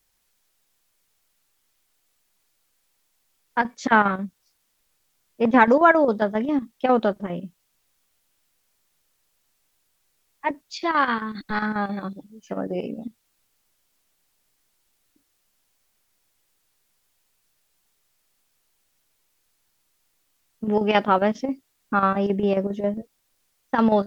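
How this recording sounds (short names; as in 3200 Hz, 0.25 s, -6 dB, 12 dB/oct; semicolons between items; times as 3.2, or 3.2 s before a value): chopped level 7.4 Hz, depth 60%, duty 75%; a quantiser's noise floor 12-bit, dither triangular; MP3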